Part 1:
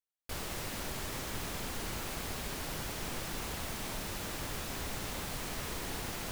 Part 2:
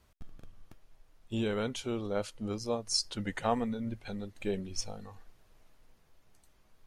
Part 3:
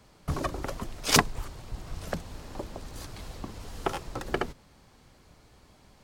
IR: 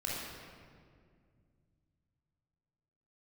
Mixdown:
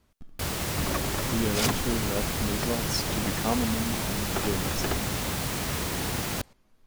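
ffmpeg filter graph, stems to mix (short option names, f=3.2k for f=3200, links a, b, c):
-filter_complex "[0:a]bass=f=250:g=5,treble=f=4k:g=1,acontrast=52,highpass=62,adelay=100,volume=2dB[a];[1:a]equalizer=f=250:w=1.5:g=7,volume=-1dB[b];[2:a]asoftclip=type=hard:threshold=-23dB,adelay=500,volume=0dB[c];[a][b][c]amix=inputs=3:normalize=0"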